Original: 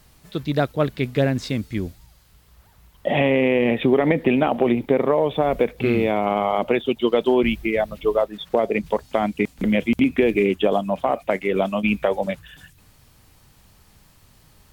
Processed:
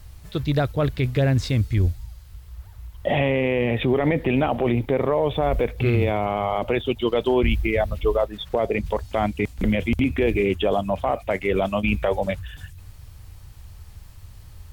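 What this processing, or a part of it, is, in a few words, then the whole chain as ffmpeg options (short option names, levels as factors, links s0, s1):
car stereo with a boomy subwoofer: -af "lowshelf=f=130:t=q:w=1.5:g=12,alimiter=limit=0.237:level=0:latency=1:release=11,volume=1.12"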